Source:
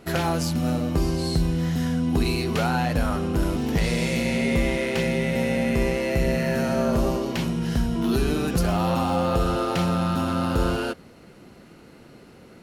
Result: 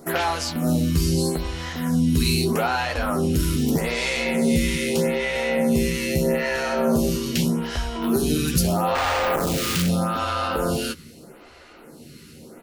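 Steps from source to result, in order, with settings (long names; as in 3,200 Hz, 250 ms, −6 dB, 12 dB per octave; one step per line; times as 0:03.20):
double-tracking delay 13 ms −6.5 dB
in parallel at 0 dB: brickwall limiter −18.5 dBFS, peak gain reduction 8.5 dB
on the sum: high-shelf EQ 3,200 Hz +9 dB
0:08.95–0:09.89: comparator with hysteresis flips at −27 dBFS
phaser with staggered stages 0.8 Hz
level −1.5 dB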